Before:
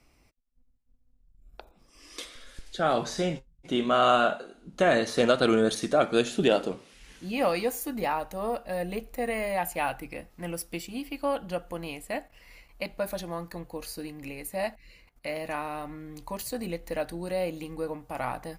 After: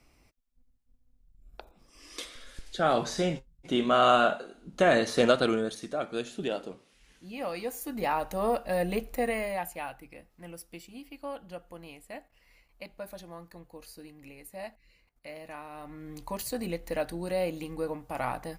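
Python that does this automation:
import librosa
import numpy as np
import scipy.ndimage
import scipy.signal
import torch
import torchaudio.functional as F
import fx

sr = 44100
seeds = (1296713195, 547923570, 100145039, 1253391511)

y = fx.gain(x, sr, db=fx.line((5.33, 0.0), (5.73, -9.5), (7.45, -9.5), (8.33, 3.0), (9.14, 3.0), (9.91, -10.0), (15.69, -10.0), (16.1, 0.0)))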